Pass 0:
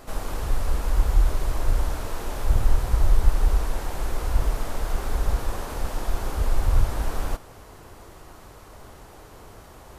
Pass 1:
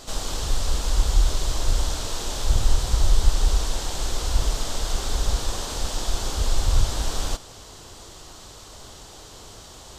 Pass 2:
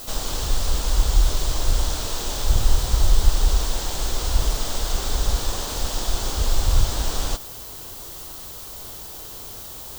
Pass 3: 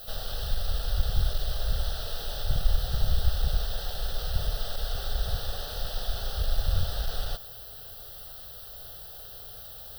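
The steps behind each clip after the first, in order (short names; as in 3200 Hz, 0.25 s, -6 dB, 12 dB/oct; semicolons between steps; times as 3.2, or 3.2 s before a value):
band shelf 5000 Hz +13 dB
added noise violet -40 dBFS; gain +1.5 dB
one-sided fold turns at -17.5 dBFS; fixed phaser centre 1500 Hz, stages 8; gain -5 dB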